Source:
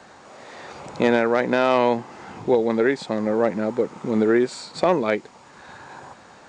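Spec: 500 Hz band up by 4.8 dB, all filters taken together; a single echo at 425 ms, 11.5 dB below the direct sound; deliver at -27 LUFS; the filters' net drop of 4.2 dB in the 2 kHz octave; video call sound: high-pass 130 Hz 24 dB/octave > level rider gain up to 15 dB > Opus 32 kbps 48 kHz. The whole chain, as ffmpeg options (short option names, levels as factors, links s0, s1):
-af "highpass=f=130:w=0.5412,highpass=f=130:w=1.3066,equalizer=f=500:t=o:g=6,equalizer=f=2000:t=o:g=-6,aecho=1:1:425:0.266,dynaudnorm=m=5.62,volume=0.355" -ar 48000 -c:a libopus -b:a 32k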